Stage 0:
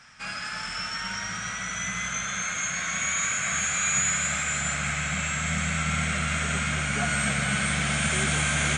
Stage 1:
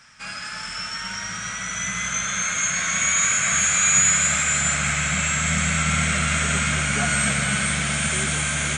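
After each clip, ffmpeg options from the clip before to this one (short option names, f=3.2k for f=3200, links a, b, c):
-af "highshelf=f=6.9k:g=7,bandreject=f=750:w=15,dynaudnorm=f=560:g=7:m=5dB"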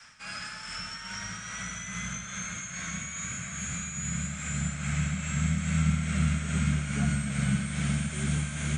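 -filter_complex "[0:a]adynamicequalizer=threshold=0.0141:dfrequency=220:dqfactor=0.9:tfrequency=220:tqfactor=0.9:attack=5:release=100:ratio=0.375:range=2.5:mode=boostabove:tftype=bell,tremolo=f=2.4:d=0.61,acrossover=split=230[a][b];[b]acompressor=threshold=-35dB:ratio=10[c];[a][c]amix=inputs=2:normalize=0"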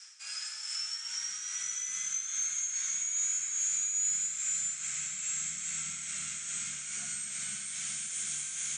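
-af "bandpass=f=6.8k:t=q:w=1.8:csg=0,volume=7.5dB"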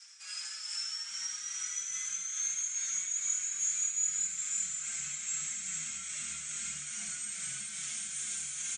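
-filter_complex "[0:a]aecho=1:1:80:0.668,asplit=2[a][b];[b]adelay=5.1,afreqshift=-2.9[c];[a][c]amix=inputs=2:normalize=1"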